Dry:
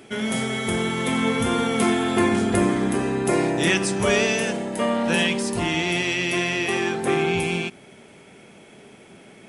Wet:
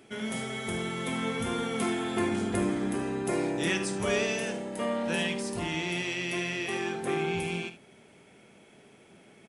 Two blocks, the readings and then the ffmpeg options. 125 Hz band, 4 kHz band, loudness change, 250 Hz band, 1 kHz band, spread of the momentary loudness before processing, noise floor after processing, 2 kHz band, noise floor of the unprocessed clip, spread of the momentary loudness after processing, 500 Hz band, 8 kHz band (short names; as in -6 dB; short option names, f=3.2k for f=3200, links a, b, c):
-8.5 dB, -9.0 dB, -8.5 dB, -8.5 dB, -9.0 dB, 4 LU, -57 dBFS, -8.5 dB, -48 dBFS, 5 LU, -8.0 dB, -8.5 dB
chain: -af "aecho=1:1:51|75:0.224|0.178,volume=-9dB"